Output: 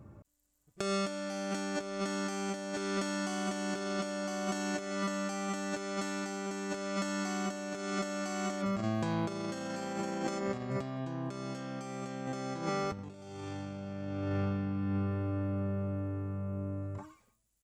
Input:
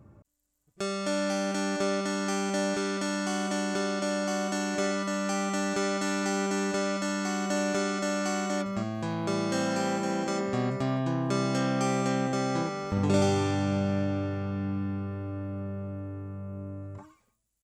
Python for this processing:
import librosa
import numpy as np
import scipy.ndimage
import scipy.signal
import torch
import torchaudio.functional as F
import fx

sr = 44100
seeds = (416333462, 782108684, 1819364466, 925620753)

y = fx.over_compress(x, sr, threshold_db=-32.0, ratio=-0.5)
y = y * 10.0 ** (-2.5 / 20.0)